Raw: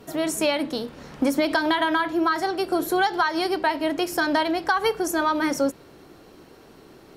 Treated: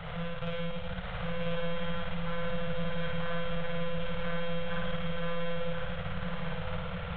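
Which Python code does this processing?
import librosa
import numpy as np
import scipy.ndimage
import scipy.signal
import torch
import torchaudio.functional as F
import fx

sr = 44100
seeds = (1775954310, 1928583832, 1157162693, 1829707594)

y = fx.bin_compress(x, sr, power=0.4)
y = fx.peak_eq(y, sr, hz=830.0, db=-13.0, octaves=0.47)
y = fx.tube_stage(y, sr, drive_db=31.0, bias=0.55)
y = fx.lpc_monotone(y, sr, seeds[0], pitch_hz=170.0, order=10)
y = fx.room_flutter(y, sr, wall_m=9.4, rt60_s=1.3)
y = fx.transient(y, sr, attack_db=5, sustain_db=-10)
y = scipy.signal.sosfilt(scipy.signal.cheby1(4, 1.0, [180.0, 480.0], 'bandstop', fs=sr, output='sos'), y)
y = fx.peak_eq(y, sr, hz=180.0, db=13.0, octaves=0.27)
y = fx.hum_notches(y, sr, base_hz=60, count=3)
y = y + 10.0 ** (-4.5 / 20.0) * np.pad(y, (int(1043 * sr / 1000.0), 0))[:len(y)]
y = y * 10.0 ** (-6.5 / 20.0)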